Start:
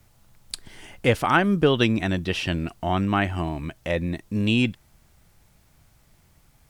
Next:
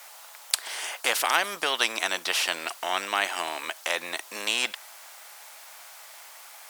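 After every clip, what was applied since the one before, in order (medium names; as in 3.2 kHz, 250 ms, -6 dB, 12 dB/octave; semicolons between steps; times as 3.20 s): high-pass 680 Hz 24 dB/octave; spectrum-flattening compressor 2:1; trim +5.5 dB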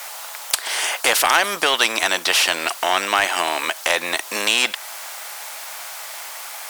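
in parallel at -1.5 dB: compression, threshold -34 dBFS, peak gain reduction 15.5 dB; on the sum: saturation -13.5 dBFS, distortion -14 dB; trim +8 dB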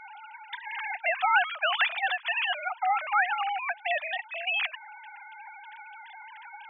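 formants replaced by sine waves; trim -8.5 dB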